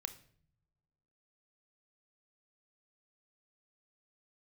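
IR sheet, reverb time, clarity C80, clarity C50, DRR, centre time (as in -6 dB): not exponential, 18.0 dB, 14.0 dB, 10.0 dB, 6 ms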